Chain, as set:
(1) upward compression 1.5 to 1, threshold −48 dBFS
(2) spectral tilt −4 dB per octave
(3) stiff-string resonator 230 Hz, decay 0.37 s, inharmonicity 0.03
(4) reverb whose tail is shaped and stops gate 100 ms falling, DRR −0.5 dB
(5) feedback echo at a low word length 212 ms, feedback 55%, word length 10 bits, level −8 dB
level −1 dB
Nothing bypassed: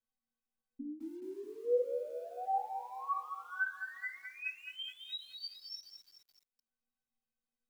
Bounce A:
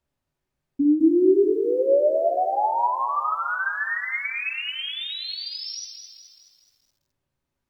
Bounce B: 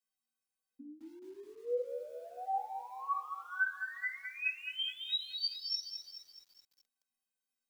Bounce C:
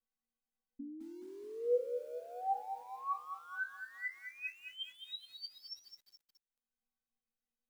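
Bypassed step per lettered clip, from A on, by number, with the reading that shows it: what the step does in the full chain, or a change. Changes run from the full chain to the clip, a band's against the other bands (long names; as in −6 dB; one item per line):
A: 3, 250 Hz band +11.5 dB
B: 2, 4 kHz band +8.5 dB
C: 4, change in momentary loudness spread +2 LU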